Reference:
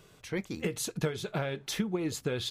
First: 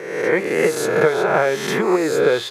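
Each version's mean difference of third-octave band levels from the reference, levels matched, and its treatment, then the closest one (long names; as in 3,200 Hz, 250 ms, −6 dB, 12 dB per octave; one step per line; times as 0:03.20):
9.0 dB: peak hold with a rise ahead of every peak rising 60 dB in 1.09 s
high-pass filter 130 Hz 24 dB per octave
flat-topped bell 880 Hz +14 dB 2.9 octaves
level +2.5 dB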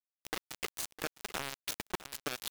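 13.0 dB: high-pass filter 400 Hz 12 dB per octave
downward compressor 4 to 1, threshold −42 dBFS, peak gain reduction 11.5 dB
bit reduction 6 bits
on a send: single-tap delay 657 ms −15.5 dB
on the sum: level +6.5 dB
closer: first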